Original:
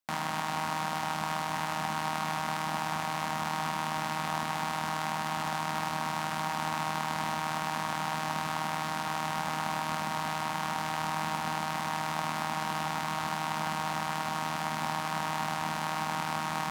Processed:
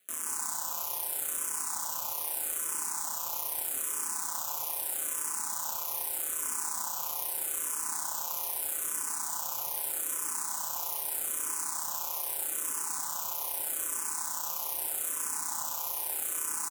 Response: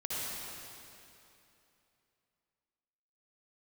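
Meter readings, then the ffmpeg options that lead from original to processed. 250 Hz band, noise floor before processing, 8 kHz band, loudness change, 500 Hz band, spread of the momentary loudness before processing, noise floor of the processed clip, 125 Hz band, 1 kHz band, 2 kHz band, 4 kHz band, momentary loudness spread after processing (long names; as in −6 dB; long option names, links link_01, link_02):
−17.5 dB, −34 dBFS, +12.5 dB, +1.0 dB, −9.5 dB, 1 LU, −36 dBFS, below −20 dB, −11.5 dB, −11.5 dB, −6.5 dB, 1 LU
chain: -filter_complex "[0:a]asoftclip=type=tanh:threshold=-18.5dB,aexciter=amount=9.8:drive=8.5:freq=6400,equalizer=frequency=2000:width_type=o:width=0.48:gain=-8,aeval=exprs='val(0)*sin(2*PI*94*n/s)':channel_layout=same,aecho=1:1:122.4|189.5:0.501|0.708,asplit=2[link_01][link_02];[1:a]atrim=start_sample=2205[link_03];[link_02][link_03]afir=irnorm=-1:irlink=0,volume=-19.5dB[link_04];[link_01][link_04]amix=inputs=2:normalize=0,alimiter=limit=-15dB:level=0:latency=1:release=53,highshelf=frequency=12000:gain=3,acrusher=bits=7:dc=4:mix=0:aa=0.000001,highpass=frequency=510:poles=1,asplit=2[link_05][link_06];[link_06]afreqshift=-0.8[link_07];[link_05][link_07]amix=inputs=2:normalize=1"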